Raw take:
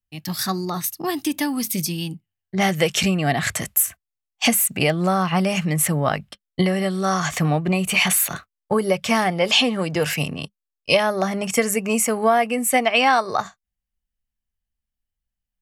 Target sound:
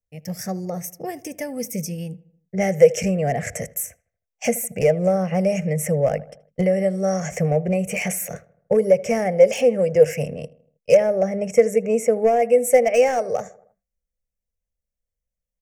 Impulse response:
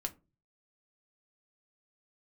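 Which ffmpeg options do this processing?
-filter_complex "[0:a]asetnsamples=n=441:p=0,asendcmd='10.95 equalizer g -15;12.42 equalizer g -3.5',equalizer=f=12000:w=0.34:g=-8,asplit=2[s0][s1];[s1]adelay=79,lowpass=f=2100:p=1,volume=0.1,asplit=2[s2][s3];[s3]adelay=79,lowpass=f=2100:p=1,volume=0.53,asplit=2[s4][s5];[s5]adelay=79,lowpass=f=2100:p=1,volume=0.53,asplit=2[s6][s7];[s7]adelay=79,lowpass=f=2100:p=1,volume=0.53[s8];[s0][s2][s4][s6][s8]amix=inputs=5:normalize=0,asoftclip=type=hard:threshold=0.224,firequalizer=gain_entry='entry(210,0);entry(310,-12);entry(490,14);entry(1000,-18);entry(2100,-1);entry(3900,-26);entry(5600,4);entry(10000,0)':delay=0.05:min_phase=1,volume=0.841"

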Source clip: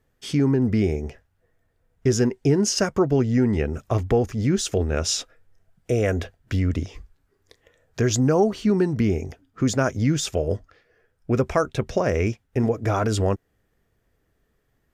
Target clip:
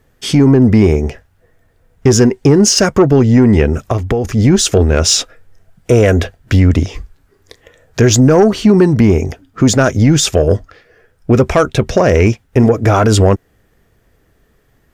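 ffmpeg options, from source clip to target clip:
-filter_complex "[0:a]asettb=1/sr,asplit=3[s0][s1][s2];[s0]atrim=end=3.734[s3];[s1]atrim=start=3.73:end=4.25,asetpts=PTS-STARTPTS,afade=t=in:d=0.004:c=qsin,afade=t=out:st=0.516:d=0.004:c=qsin,acompressor=threshold=0.0501:ratio=6[s4];[s2]atrim=start=4.246[s5];[s3][s4]acrossfade=d=0.004:c1=hsin:c2=qsin[s6];[s6][s5]acrossfade=d=0.004:c1=qsin:c2=hsin,asoftclip=type=tanh:threshold=0.224,alimiter=level_in=5.62:limit=0.891:release=50:level=0:latency=1,volume=0.891"

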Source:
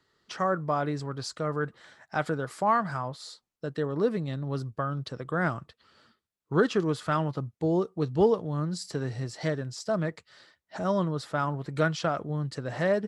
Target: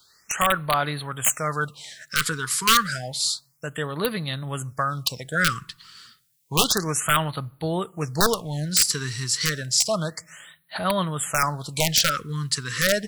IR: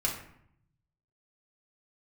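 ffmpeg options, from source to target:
-filter_complex "[0:a]crystalizer=i=8.5:c=0,aeval=exprs='(mod(4.22*val(0)+1,2)-1)/4.22':c=same,equalizer=f=350:w=1:g=-8,asplit=2[s0][s1];[1:a]atrim=start_sample=2205[s2];[s1][s2]afir=irnorm=-1:irlink=0,volume=0.0473[s3];[s0][s3]amix=inputs=2:normalize=0,afftfilt=real='re*(1-between(b*sr/1024,630*pow(6700/630,0.5+0.5*sin(2*PI*0.3*pts/sr))/1.41,630*pow(6700/630,0.5+0.5*sin(2*PI*0.3*pts/sr))*1.41))':imag='im*(1-between(b*sr/1024,630*pow(6700/630,0.5+0.5*sin(2*PI*0.3*pts/sr))/1.41,630*pow(6700/630,0.5+0.5*sin(2*PI*0.3*pts/sr))*1.41))':win_size=1024:overlap=0.75,volume=1.5"

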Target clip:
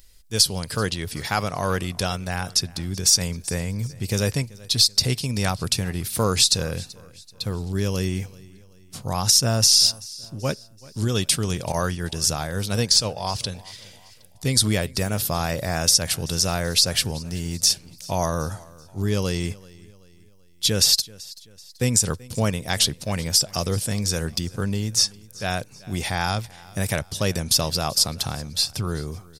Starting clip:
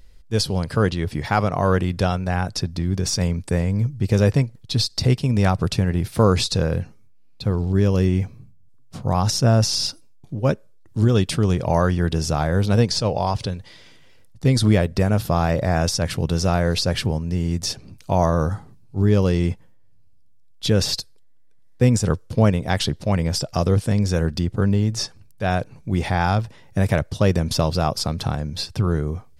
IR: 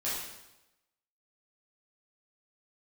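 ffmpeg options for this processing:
-filter_complex "[0:a]aecho=1:1:383|766|1149:0.0794|0.035|0.0154,crystalizer=i=6.5:c=0,asettb=1/sr,asplit=3[s0][s1][s2];[s0]atrim=end=11.724[s3];[s1]atrim=start=11.72:end=13.25,asetpts=PTS-STARTPTS,afade=t=in:d=0.004:c=qsin,afade=t=out:st=1.526:d=0.004:c=qsin,agate=range=0.0224:threshold=0.178:ratio=3:detection=peak[s4];[s2]atrim=start=13.246[s5];[s3][s4]acrossfade=d=0.004:c1=hsin:c2=qsin[s6];[s6][s5]acrossfade=d=0.004:c1=qsin:c2=hsin,volume=0.447"

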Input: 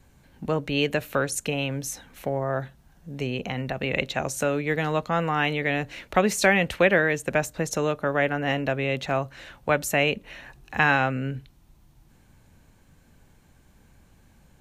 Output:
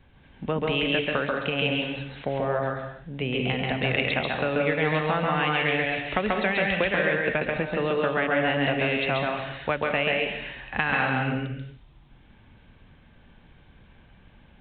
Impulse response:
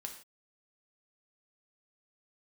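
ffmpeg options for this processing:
-filter_complex "[0:a]highshelf=f=3000:g=9,acompressor=threshold=0.0794:ratio=6,asplit=2[s0][s1];[1:a]atrim=start_sample=2205,asetrate=24696,aresample=44100,adelay=136[s2];[s1][s2]afir=irnorm=-1:irlink=0,volume=0.944[s3];[s0][s3]amix=inputs=2:normalize=0,aresample=8000,aresample=44100"

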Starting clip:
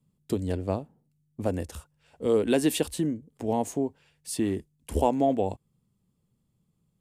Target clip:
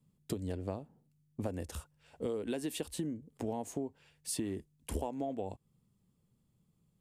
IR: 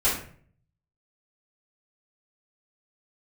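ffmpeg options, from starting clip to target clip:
-af "acompressor=threshold=0.0251:ratio=10,volume=0.891"

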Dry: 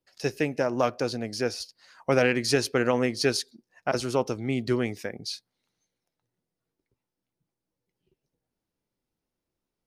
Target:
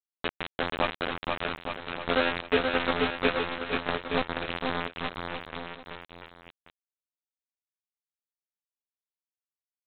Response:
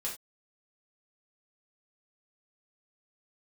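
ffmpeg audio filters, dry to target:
-af "lowpass=f=3000:w=0.5412,lowpass=f=3000:w=1.3066,bandreject=f=50:t=h:w=6,bandreject=f=100:t=h:w=6,bandreject=f=150:t=h:w=6,bandreject=f=200:t=h:w=6,bandreject=f=250:t=h:w=6,bandreject=f=300:t=h:w=6,afftfilt=real='hypot(re,im)*cos(PI*b)':imag='0':win_size=2048:overlap=0.75,aresample=8000,acrusher=bits=3:mix=0:aa=0.000001,aresample=44100,aecho=1:1:480|864|1171|1417|1614:0.631|0.398|0.251|0.158|0.1"

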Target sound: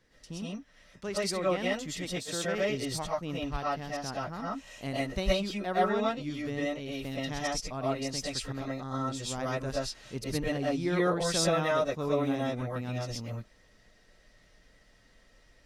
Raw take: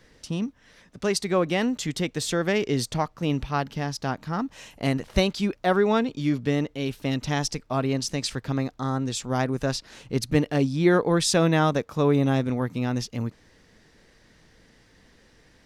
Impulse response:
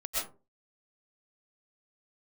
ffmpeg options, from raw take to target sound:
-filter_complex "[0:a]asettb=1/sr,asplit=3[s0][s1][s2];[s0]atrim=end=2.054[s3];[s1]atrim=start=2.05:end=2.45,asetpts=PTS-STARTPTS,afade=t=in:d=0.004:c=qsin,afade=t=out:st=0.396:d=0.004:c=qsin,highpass=110[s4];[s2]atrim=start=2.446[s5];[s3][s4]acrossfade=d=0.004:c1=hsin:c2=qsin[s6];[s6][s5]acrossfade=d=0.004:c1=qsin:c2=hsin[s7];[1:a]atrim=start_sample=2205,atrim=end_sample=6174[s8];[s7][s8]afir=irnorm=-1:irlink=0,volume=0.376"

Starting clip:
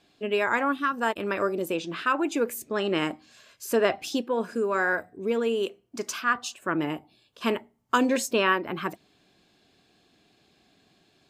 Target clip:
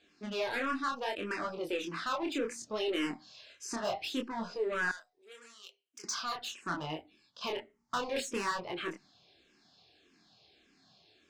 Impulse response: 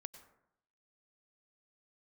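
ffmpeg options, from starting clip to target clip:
-filter_complex "[0:a]asplit=2[s0][s1];[s1]volume=20,asoftclip=hard,volume=0.0501,volume=0.355[s2];[s0][s2]amix=inputs=2:normalize=0,lowpass=f=5300:t=q:w=1.9,lowshelf=f=350:g=-3.5,asoftclip=type=tanh:threshold=0.0708,flanger=delay=22.5:depth=7.6:speed=0.69,asettb=1/sr,asplit=3[s3][s4][s5];[s3]atrim=end=4.914[s6];[s4]atrim=start=4.91:end=6.04,asetpts=PTS-STARTPTS,afade=t=in:d=0.004:c=qsin,afade=t=out:st=1.126:d=0.004:c=qsin,aderivative[s7];[s5]atrim=start=6.036[s8];[s6][s7]acrossfade=d=0.004:c1=hsin:c2=qsin[s9];[s9][s8]acrossfade=d=0.004:c1=qsin:c2=hsin,asplit=2[s10][s11];[s11]afreqshift=-1.7[s12];[s10][s12]amix=inputs=2:normalize=1"

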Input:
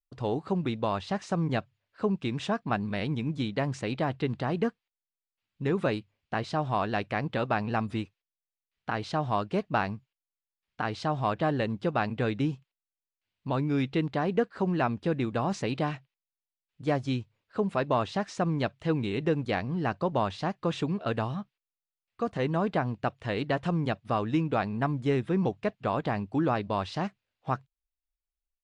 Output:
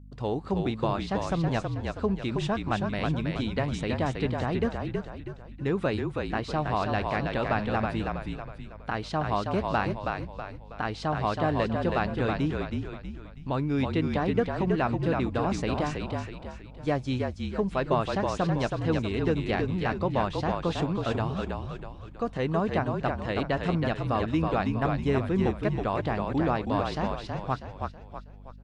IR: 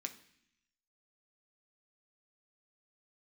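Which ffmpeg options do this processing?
-filter_complex "[0:a]asplit=2[s0][s1];[s1]asplit=5[s2][s3][s4][s5][s6];[s2]adelay=322,afreqshift=-44,volume=0.631[s7];[s3]adelay=644,afreqshift=-88,volume=0.272[s8];[s4]adelay=966,afreqshift=-132,volume=0.116[s9];[s5]adelay=1288,afreqshift=-176,volume=0.0501[s10];[s6]adelay=1610,afreqshift=-220,volume=0.0216[s11];[s7][s8][s9][s10][s11]amix=inputs=5:normalize=0[s12];[s0][s12]amix=inputs=2:normalize=0,aeval=exprs='val(0)+0.00501*(sin(2*PI*50*n/s)+sin(2*PI*2*50*n/s)/2+sin(2*PI*3*50*n/s)/3+sin(2*PI*4*50*n/s)/4+sin(2*PI*5*50*n/s)/5)':c=same"

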